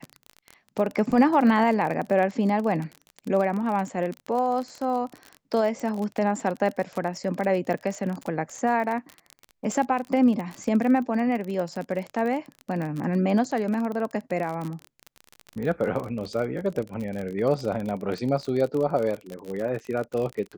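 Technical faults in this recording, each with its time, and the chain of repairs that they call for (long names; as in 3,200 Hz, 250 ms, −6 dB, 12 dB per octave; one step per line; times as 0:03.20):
surface crackle 38 per second −29 dBFS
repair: click removal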